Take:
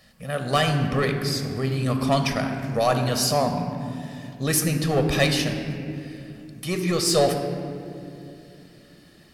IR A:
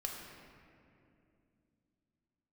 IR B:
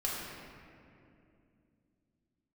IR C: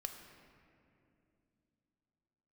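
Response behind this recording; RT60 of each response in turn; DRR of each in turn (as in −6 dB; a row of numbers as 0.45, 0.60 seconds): C; 2.6, 2.6, 2.7 seconds; −0.5, −6.0, 4.5 decibels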